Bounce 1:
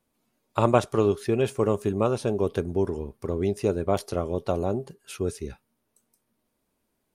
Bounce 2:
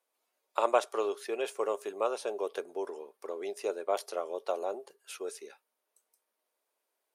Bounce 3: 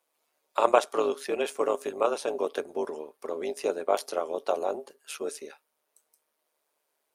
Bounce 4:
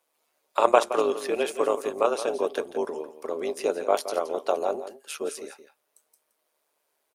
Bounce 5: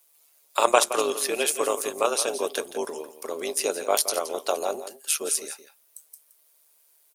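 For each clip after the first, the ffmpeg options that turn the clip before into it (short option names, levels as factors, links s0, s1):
-af "highpass=f=460:w=0.5412,highpass=f=460:w=1.3066,volume=0.631"
-af "tremolo=f=150:d=0.571,volume=2.37"
-af "aecho=1:1:170:0.237,volume=1.33"
-af "crystalizer=i=6:c=0,volume=0.75"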